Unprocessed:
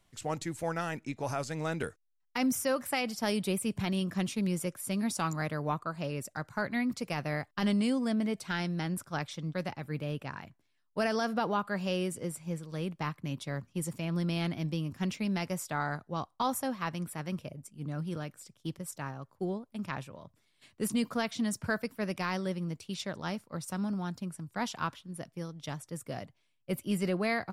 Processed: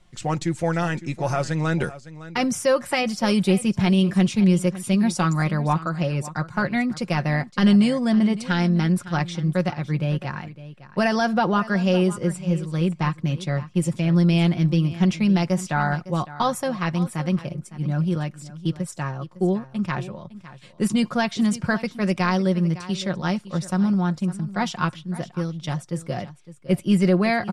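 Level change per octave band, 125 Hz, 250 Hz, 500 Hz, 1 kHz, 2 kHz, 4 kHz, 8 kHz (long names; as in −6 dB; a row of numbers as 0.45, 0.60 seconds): +14.0, +12.5, +10.0, +9.5, +9.0, +8.5, +5.0 decibels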